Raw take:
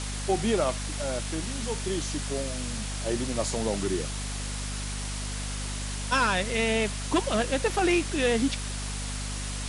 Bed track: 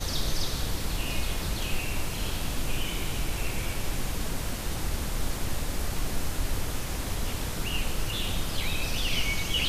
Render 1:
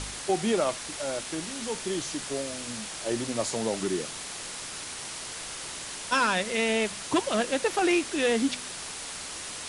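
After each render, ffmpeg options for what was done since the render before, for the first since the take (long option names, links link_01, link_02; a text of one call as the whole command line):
ffmpeg -i in.wav -af "bandreject=frequency=50:width_type=h:width=4,bandreject=frequency=100:width_type=h:width=4,bandreject=frequency=150:width_type=h:width=4,bandreject=frequency=200:width_type=h:width=4,bandreject=frequency=250:width_type=h:width=4" out.wav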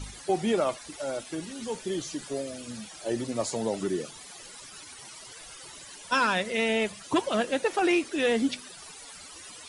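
ffmpeg -i in.wav -af "afftdn=noise_reduction=15:noise_floor=-38" out.wav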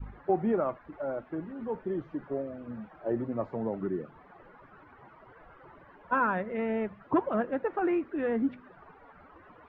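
ffmpeg -i in.wav -af "lowpass=frequency=1500:width=0.5412,lowpass=frequency=1500:width=1.3066,adynamicequalizer=threshold=0.01:dfrequency=640:dqfactor=0.72:tfrequency=640:tqfactor=0.72:attack=5:release=100:ratio=0.375:range=3.5:mode=cutabove:tftype=bell" out.wav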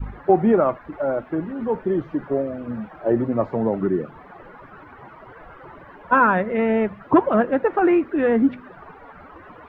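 ffmpeg -i in.wav -af "volume=11dB" out.wav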